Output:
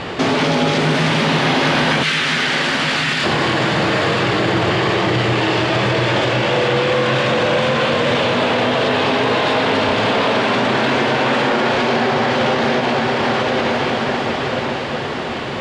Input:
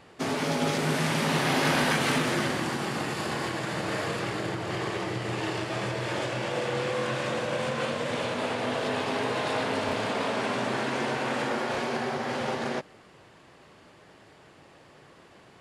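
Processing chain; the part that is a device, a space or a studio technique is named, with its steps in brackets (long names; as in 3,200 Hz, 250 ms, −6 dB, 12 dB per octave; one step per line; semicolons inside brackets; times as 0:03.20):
0:02.03–0:03.24: inverse Chebyshev high-pass filter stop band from 690 Hz, stop band 40 dB
parametric band 3,400 Hz +4.5 dB 0.91 octaves
feedback delay with all-pass diffusion 968 ms, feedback 47%, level −12 dB
loud club master (downward compressor 3 to 1, threshold −29 dBFS, peak gain reduction 7 dB; hard clipping −23.5 dBFS, distortion −28 dB; boost into a limiter +34 dB)
high-frequency loss of the air 95 metres
level −7 dB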